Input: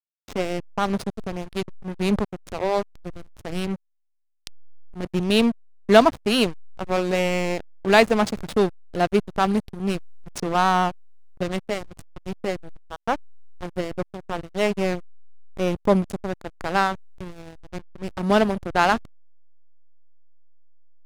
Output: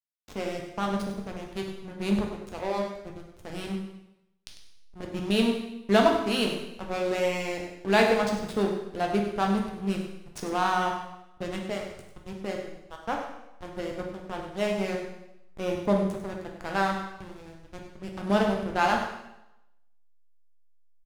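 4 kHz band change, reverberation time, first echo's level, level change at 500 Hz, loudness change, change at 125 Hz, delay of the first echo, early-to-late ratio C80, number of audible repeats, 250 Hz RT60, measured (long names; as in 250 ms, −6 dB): −5.0 dB, 0.90 s, −10.0 dB, −5.0 dB, −5.0 dB, −5.5 dB, 99 ms, 6.0 dB, 1, 0.85 s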